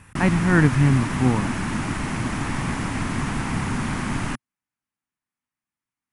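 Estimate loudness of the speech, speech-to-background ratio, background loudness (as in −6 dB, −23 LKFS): −20.0 LKFS, 6.5 dB, −26.5 LKFS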